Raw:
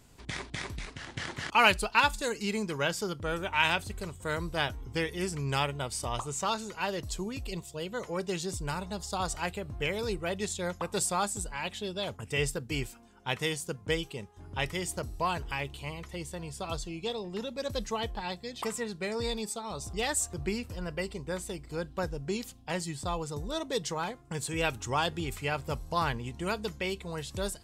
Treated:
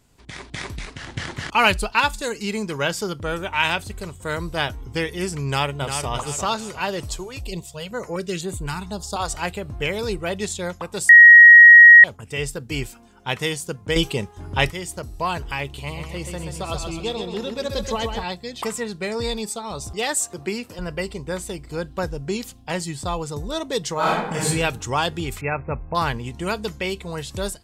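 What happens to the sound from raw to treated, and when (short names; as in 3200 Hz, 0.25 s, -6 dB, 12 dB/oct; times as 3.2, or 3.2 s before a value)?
1.03–1.92 low shelf 160 Hz +6.5 dB
5.46–6.1 echo throw 0.35 s, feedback 40%, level -7 dB
7.16–9.29 stepped notch 4 Hz 220–5300 Hz
11.09–12.04 bleep 1890 Hz -6 dBFS
13.96–14.7 gain +9.5 dB
15.65–18.24 feedback echo 0.13 s, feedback 47%, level -6 dB
19.93–20.79 HPF 210 Hz
23.94–24.46 reverb throw, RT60 0.86 s, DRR -7 dB
25.41–25.95 brick-wall FIR low-pass 2700 Hz
whole clip: AGC gain up to 9 dB; gain -2 dB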